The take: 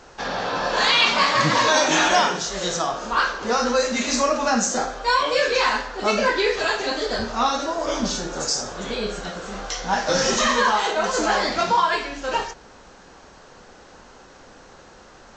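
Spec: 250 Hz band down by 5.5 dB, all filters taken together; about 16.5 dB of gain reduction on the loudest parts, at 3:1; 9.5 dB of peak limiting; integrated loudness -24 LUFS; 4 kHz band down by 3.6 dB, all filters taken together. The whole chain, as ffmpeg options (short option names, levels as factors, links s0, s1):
-af "equalizer=f=250:t=o:g=-7,equalizer=f=4000:t=o:g=-4.5,acompressor=threshold=0.0112:ratio=3,volume=6.68,alimiter=limit=0.188:level=0:latency=1"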